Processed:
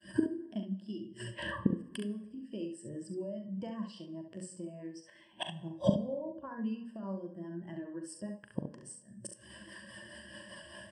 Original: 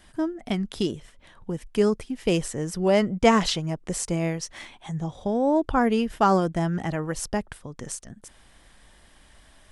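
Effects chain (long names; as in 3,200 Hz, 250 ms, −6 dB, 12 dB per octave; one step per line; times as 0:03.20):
high-pass filter 96 Hz 24 dB per octave
mains-hum notches 60/120/180/240/300/360/420 Hz
downward expander −51 dBFS
EQ curve with evenly spaced ripples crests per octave 1.3, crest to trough 12 dB
in parallel at 0 dB: brickwall limiter −14 dBFS, peak gain reduction 8.5 dB
on the sum: downward compressor 6 to 1, threshold −23 dBFS, peak gain reduction 14 dB
rotating-speaker cabinet horn 5.5 Hz
tempo change 0.89×
gate with flip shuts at −31 dBFS, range −27 dB
ambience of single reflections 41 ms −9 dB, 68 ms −5.5 dB
on a send at −11 dB: convolution reverb RT60 1.2 s, pre-delay 68 ms
on the sum: every bin expanded away from the loudest bin 1.5 to 1
level +15.5 dB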